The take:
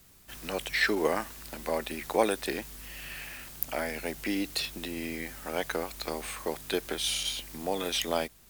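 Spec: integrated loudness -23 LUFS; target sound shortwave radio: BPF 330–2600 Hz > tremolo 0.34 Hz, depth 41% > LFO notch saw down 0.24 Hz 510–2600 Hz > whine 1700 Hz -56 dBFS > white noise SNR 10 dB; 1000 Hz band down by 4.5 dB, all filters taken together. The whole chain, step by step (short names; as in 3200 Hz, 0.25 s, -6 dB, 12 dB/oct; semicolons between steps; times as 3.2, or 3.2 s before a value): BPF 330–2600 Hz; bell 1000 Hz -6 dB; tremolo 0.34 Hz, depth 41%; LFO notch saw down 0.24 Hz 510–2600 Hz; whine 1700 Hz -56 dBFS; white noise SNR 10 dB; gain +18 dB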